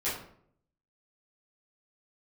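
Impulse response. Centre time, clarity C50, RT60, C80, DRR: 44 ms, 4.0 dB, 0.65 s, 8.0 dB, −11.5 dB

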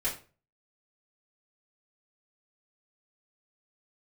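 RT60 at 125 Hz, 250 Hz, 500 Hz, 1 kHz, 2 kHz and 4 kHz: 0.50, 0.40, 0.40, 0.35, 0.30, 0.30 seconds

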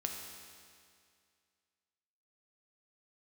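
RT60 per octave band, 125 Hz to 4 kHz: 2.2, 2.2, 2.2, 2.2, 2.2, 2.1 seconds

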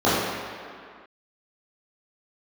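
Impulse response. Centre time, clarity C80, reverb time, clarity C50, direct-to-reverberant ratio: 123 ms, 0.0 dB, 2.1 s, −2.0 dB, −12.5 dB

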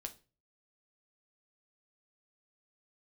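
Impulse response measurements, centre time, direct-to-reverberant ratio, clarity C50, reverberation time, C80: 6 ms, 5.5 dB, 16.5 dB, 0.35 s, 23.0 dB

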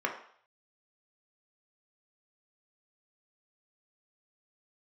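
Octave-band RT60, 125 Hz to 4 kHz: 0.55, 0.40, 0.55, 0.60, 0.55, 0.60 seconds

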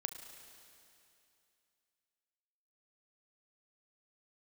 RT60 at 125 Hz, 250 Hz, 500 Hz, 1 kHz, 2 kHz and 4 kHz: 2.7, 2.7, 2.7, 2.7, 2.7, 2.7 seconds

